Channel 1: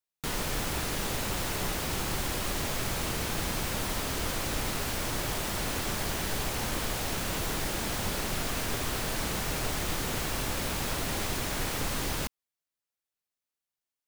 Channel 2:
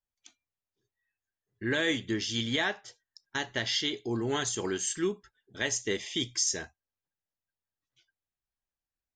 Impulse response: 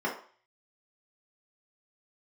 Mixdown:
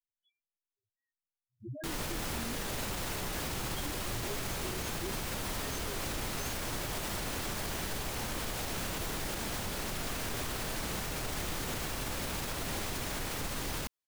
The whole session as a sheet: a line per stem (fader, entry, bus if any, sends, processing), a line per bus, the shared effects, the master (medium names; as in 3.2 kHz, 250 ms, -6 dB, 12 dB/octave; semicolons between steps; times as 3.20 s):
-2.0 dB, 1.60 s, no send, none
-0.5 dB, 0.00 s, no send, peaking EQ 93 Hz +7 dB 1.1 oct; chorus 0.28 Hz, delay 17 ms, depth 6.8 ms; loudest bins only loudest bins 1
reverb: none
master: peak limiter -26.5 dBFS, peak gain reduction 6 dB